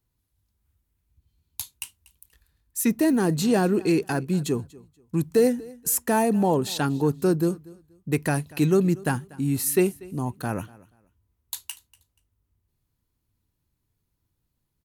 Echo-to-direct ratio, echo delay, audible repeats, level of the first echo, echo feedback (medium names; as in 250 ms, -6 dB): -22.0 dB, 240 ms, 2, -22.0 dB, 24%